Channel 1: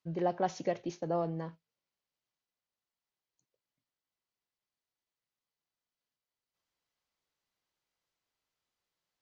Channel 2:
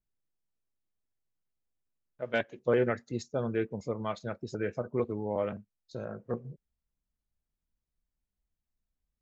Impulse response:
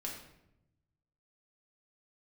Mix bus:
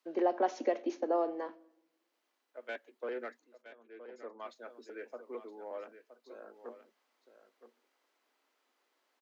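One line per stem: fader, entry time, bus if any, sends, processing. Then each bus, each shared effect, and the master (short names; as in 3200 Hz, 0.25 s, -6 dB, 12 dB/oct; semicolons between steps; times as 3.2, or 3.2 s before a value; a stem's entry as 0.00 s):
+1.5 dB, 0.00 s, muted 3.62–4.46, send -14.5 dB, no echo send, three-band squash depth 40%
-14.0 dB, 0.35 s, no send, echo send -12.5 dB, overdrive pedal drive 12 dB, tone 3100 Hz, clips at -14.5 dBFS; auto duck -24 dB, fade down 0.20 s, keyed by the first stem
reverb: on, RT60 0.85 s, pre-delay 5 ms
echo: echo 0.969 s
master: steep high-pass 240 Hz 72 dB/oct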